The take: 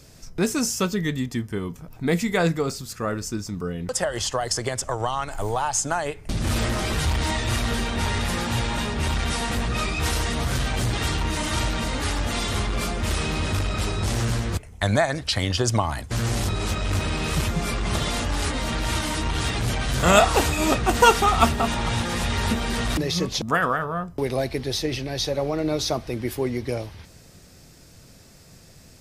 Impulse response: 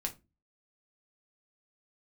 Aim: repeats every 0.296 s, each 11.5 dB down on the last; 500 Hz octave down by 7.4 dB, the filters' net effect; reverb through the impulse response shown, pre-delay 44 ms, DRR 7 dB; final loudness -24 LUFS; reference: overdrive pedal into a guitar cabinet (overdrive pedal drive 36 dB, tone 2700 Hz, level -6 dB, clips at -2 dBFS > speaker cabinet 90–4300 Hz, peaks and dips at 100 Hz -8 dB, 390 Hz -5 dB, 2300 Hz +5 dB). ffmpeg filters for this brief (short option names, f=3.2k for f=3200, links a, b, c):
-filter_complex "[0:a]equalizer=f=500:t=o:g=-8,aecho=1:1:296|592|888:0.266|0.0718|0.0194,asplit=2[a][b];[1:a]atrim=start_sample=2205,adelay=44[c];[b][c]afir=irnorm=-1:irlink=0,volume=-8dB[d];[a][d]amix=inputs=2:normalize=0,asplit=2[e][f];[f]highpass=f=720:p=1,volume=36dB,asoftclip=type=tanh:threshold=-2dB[g];[e][g]amix=inputs=2:normalize=0,lowpass=f=2.7k:p=1,volume=-6dB,highpass=90,equalizer=f=100:t=q:w=4:g=-8,equalizer=f=390:t=q:w=4:g=-5,equalizer=f=2.3k:t=q:w=4:g=5,lowpass=f=4.3k:w=0.5412,lowpass=f=4.3k:w=1.3066,volume=-13.5dB"